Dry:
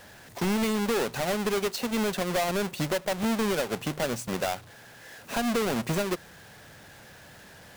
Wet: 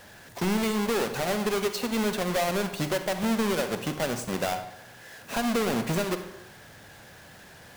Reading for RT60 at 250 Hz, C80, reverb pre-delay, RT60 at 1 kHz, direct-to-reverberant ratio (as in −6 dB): 0.85 s, 11.5 dB, 38 ms, 0.90 s, 8.0 dB